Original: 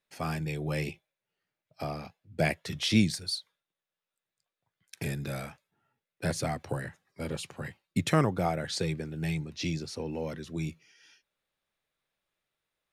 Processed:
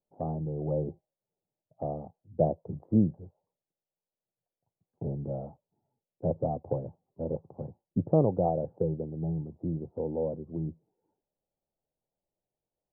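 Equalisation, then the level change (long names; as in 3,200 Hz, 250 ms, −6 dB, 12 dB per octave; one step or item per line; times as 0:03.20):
Butterworth low-pass 860 Hz 48 dB per octave
dynamic equaliser 520 Hz, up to +7 dB, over −46 dBFS, Q 2.7
0.0 dB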